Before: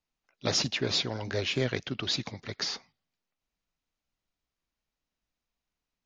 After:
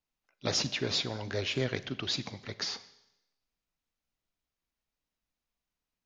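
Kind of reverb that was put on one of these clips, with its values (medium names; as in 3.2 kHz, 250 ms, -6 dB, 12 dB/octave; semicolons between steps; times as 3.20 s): Schroeder reverb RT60 0.92 s, combs from 30 ms, DRR 15 dB; trim -2.5 dB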